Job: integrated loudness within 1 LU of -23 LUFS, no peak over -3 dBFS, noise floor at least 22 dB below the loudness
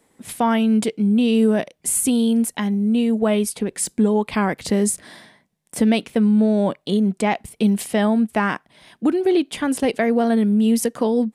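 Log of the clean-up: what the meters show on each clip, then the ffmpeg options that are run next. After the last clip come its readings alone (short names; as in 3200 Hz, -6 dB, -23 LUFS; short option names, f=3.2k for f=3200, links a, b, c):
loudness -19.5 LUFS; peak -6.0 dBFS; loudness target -23.0 LUFS
-> -af "volume=-3.5dB"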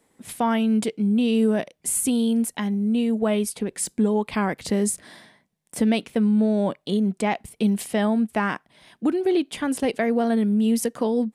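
loudness -23.0 LUFS; peak -9.5 dBFS; noise floor -69 dBFS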